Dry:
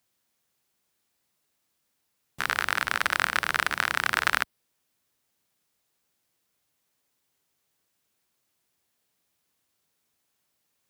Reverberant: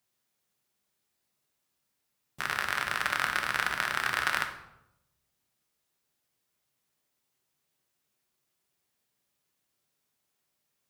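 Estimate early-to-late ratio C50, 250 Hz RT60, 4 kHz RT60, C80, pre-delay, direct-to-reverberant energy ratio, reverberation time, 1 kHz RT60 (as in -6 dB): 8.5 dB, 1.0 s, 0.55 s, 12.0 dB, 5 ms, 3.5 dB, 0.85 s, 0.80 s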